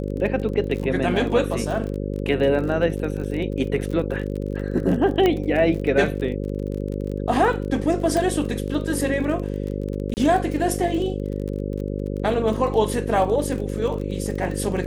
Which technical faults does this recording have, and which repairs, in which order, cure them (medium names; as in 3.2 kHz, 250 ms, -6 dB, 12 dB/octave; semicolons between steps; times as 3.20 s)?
buzz 50 Hz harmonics 11 -27 dBFS
crackle 30 per s -29 dBFS
5.26 s: pop -8 dBFS
8.17 s: pop -12 dBFS
10.14–10.17 s: dropout 29 ms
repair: de-click; de-hum 50 Hz, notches 11; interpolate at 10.14 s, 29 ms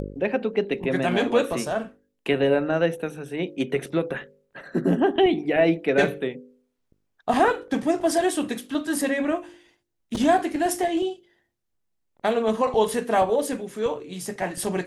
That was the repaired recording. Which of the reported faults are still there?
5.26 s: pop
8.17 s: pop